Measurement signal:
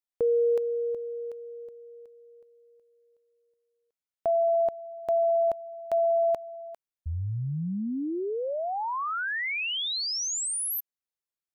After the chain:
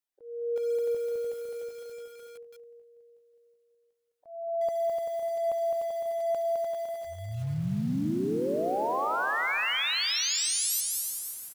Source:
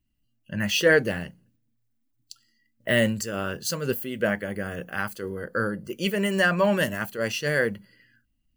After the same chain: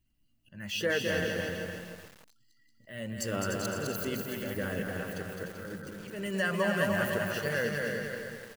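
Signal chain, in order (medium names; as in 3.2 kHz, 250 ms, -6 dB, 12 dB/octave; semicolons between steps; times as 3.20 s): coarse spectral quantiser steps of 15 dB; compression 3:1, threshold -31 dBFS; slow attack 407 ms; bouncing-ball echo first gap 210 ms, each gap 0.85×, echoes 5; bit-crushed delay 298 ms, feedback 35%, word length 8-bit, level -5 dB; trim +1 dB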